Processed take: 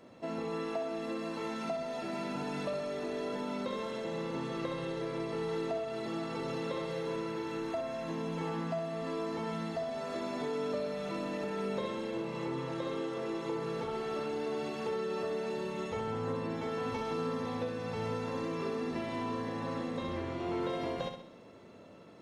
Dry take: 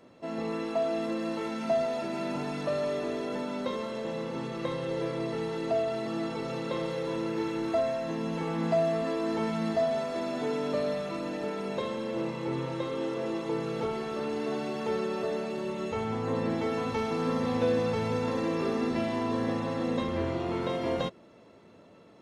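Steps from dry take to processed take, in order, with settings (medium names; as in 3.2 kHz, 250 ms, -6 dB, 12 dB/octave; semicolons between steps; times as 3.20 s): compression, threshold -33 dBFS, peak gain reduction 10.5 dB; on a send: flutter echo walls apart 11.2 m, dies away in 0.57 s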